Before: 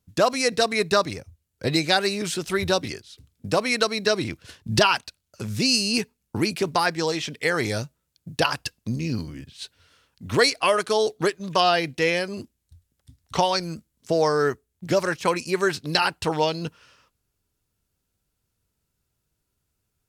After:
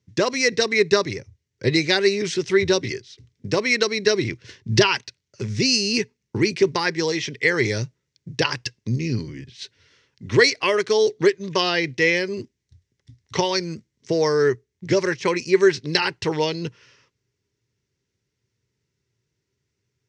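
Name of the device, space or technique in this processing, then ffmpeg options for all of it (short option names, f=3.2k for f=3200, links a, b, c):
car door speaker: -af "highpass=87,equalizer=f=120:t=q:w=4:g=9,equalizer=f=390:t=q:w=4:g=9,equalizer=f=710:t=q:w=4:g=-10,equalizer=f=1.3k:t=q:w=4:g=-6,equalizer=f=2k:t=q:w=4:g=9,equalizer=f=5.8k:t=q:w=4:g=6,lowpass=f=6.5k:w=0.5412,lowpass=f=6.5k:w=1.3066"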